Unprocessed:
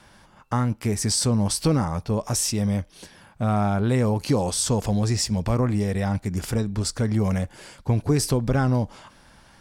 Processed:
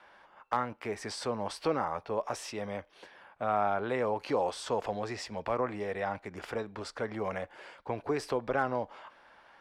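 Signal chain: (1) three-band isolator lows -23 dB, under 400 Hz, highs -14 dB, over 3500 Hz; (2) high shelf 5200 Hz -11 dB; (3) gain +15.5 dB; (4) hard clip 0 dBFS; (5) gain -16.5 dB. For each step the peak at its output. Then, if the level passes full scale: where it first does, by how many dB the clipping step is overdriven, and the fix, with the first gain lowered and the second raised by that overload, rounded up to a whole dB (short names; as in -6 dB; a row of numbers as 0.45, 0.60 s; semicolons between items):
-11.5, -12.0, +3.5, 0.0, -16.5 dBFS; step 3, 3.5 dB; step 3 +11.5 dB, step 5 -12.5 dB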